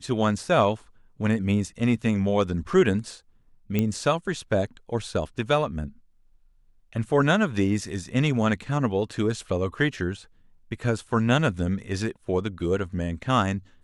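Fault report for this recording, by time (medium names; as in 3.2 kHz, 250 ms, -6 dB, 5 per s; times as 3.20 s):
3.79 s: pop -11 dBFS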